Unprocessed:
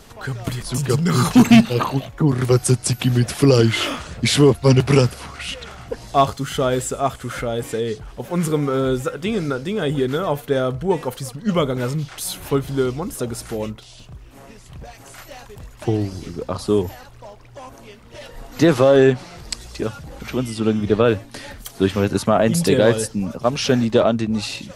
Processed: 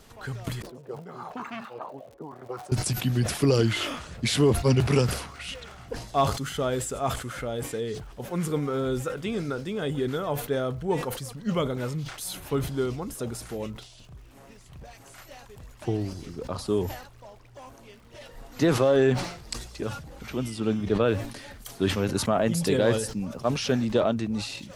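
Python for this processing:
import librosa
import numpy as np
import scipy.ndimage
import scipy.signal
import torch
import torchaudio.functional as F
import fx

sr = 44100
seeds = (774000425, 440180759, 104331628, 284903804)

y = fx.auto_wah(x, sr, base_hz=360.0, top_hz=1200.0, q=3.1, full_db=-8.5, direction='up', at=(0.62, 2.72))
y = fx.dmg_crackle(y, sr, seeds[0], per_s=170.0, level_db=-43.0)
y = fx.sustainer(y, sr, db_per_s=85.0)
y = y * 10.0 ** (-8.0 / 20.0)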